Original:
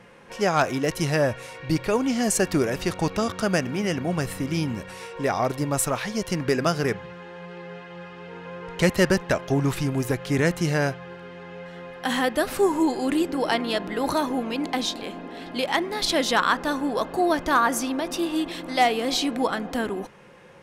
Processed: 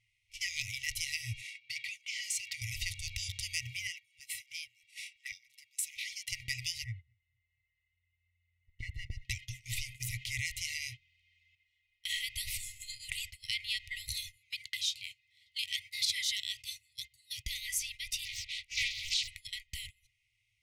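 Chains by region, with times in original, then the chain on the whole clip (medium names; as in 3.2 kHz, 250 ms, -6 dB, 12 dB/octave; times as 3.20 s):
1.41–2.62 s: overdrive pedal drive 9 dB, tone 2.4 kHz, clips at -10.5 dBFS + high-pass 340 Hz + compression 2:1, threshold -26 dBFS
3.87–6.33 s: compression 2:1, threshold -31 dBFS + LFO high-pass saw up 6.2 Hz 380–1800 Hz
6.84–9.25 s: Savitzky-Golay filter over 65 samples + feedback delay 230 ms, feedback 48%, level -22.5 dB
11.55–12.25 s: gate -38 dBFS, range -8 dB + tone controls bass -3 dB, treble -2 dB
14.36–17.45 s: high-pass 120 Hz + Shepard-style phaser falling 1.2 Hz
18.25–19.28 s: low-pass 6.8 kHz + bass shelf 220 Hz -8.5 dB + loudspeaker Doppler distortion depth 0.57 ms
whole clip: FFT band-reject 120–1900 Hz; gate -42 dBFS, range -19 dB; compression 1.5:1, threshold -37 dBFS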